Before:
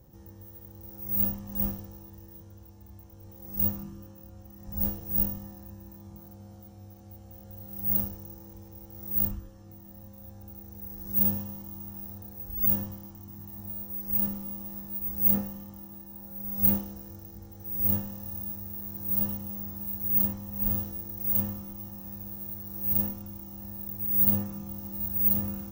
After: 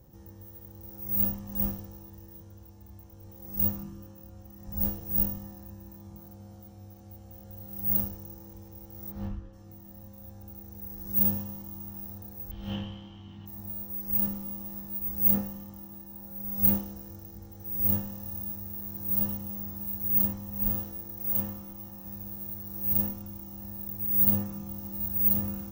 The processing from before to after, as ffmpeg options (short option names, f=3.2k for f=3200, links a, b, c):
-filter_complex "[0:a]asplit=3[a][b][c];[a]afade=t=out:st=9.1:d=0.02[d];[b]lowpass=3.4k,afade=t=in:st=9.1:d=0.02,afade=t=out:st=9.52:d=0.02[e];[c]afade=t=in:st=9.52:d=0.02[f];[d][e][f]amix=inputs=3:normalize=0,asettb=1/sr,asplit=3[g][h][i];[g]atrim=end=12.514[j];[h]atrim=start=12.51:end=13.46,asetpts=PTS-STARTPTS,afade=t=in:d=0.004:c=qsin,afade=t=out:st=0.946:d=0.004:c=qsin,lowpass=f=3.1k:t=q:w=13[k];[i]atrim=start=13.456[l];[j][k]acrossfade=d=0.004:c1=hsin:c2=qsin[m];[m][l]acrossfade=d=0.004:c1=qsin:c2=hsin,asettb=1/sr,asplit=3[n][o][p];[n]atrim=end=20.714[q];[o]atrim=start=20.71:end=22.06,asetpts=PTS-STARTPTS,afade=t=in:d=0.004:c=qsin,afade=t=out:st=1.346:d=0.004:c=qsin,bass=f=250:g=-4,treble=f=4k:g=-2[r];[p]atrim=start=22.056[s];[q][r]acrossfade=d=0.004:c1=hsin:c2=qsin[t];[t][s]acrossfade=d=0.004:c1=qsin:c2=hsin"